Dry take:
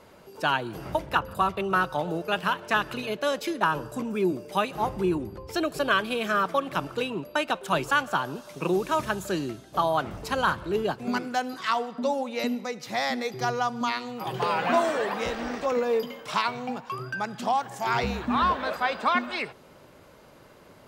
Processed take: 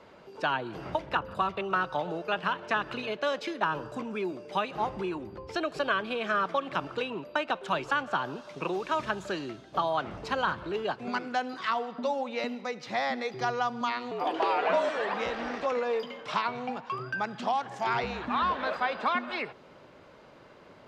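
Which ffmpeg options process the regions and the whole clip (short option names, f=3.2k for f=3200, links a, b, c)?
-filter_complex "[0:a]asettb=1/sr,asplit=3[a][b][c];[a]atrim=end=14.114[d];[b]atrim=start=14.11:end=14.89,asetpts=PTS-STARTPTS,afade=t=in:d=0.004:c=qsin,afade=t=out:st=0.776:d=0.004:c=qsin,highpass=f=290:w=0.5412,highpass=f=290:w=1.3066,equalizer=f=550:t=o:w=2.2:g=7.5,afreqshift=-57[e];[c]atrim=start=14.886[f];[d][e]acrossfade=d=0.004:c1=hsin:c2=qsin[g];[g][f]acrossfade=d=0.004:c1=qsin:c2=hsin,lowpass=4.3k,lowshelf=f=130:g=-7,acrossover=split=530|1800[h][i][j];[h]acompressor=threshold=-36dB:ratio=4[k];[i]acompressor=threshold=-27dB:ratio=4[l];[j]acompressor=threshold=-36dB:ratio=4[m];[k][l][m]amix=inputs=3:normalize=0"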